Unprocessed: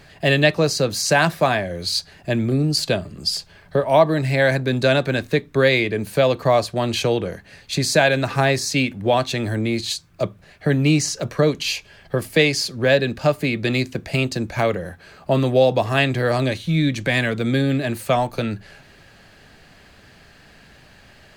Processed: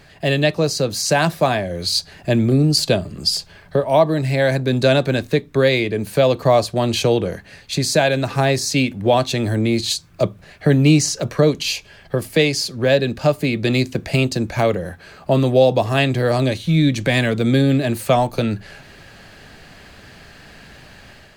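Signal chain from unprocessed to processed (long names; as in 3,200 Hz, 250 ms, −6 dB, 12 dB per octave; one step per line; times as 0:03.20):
automatic gain control gain up to 6 dB
dynamic equaliser 1,700 Hz, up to −5 dB, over −31 dBFS, Q 0.91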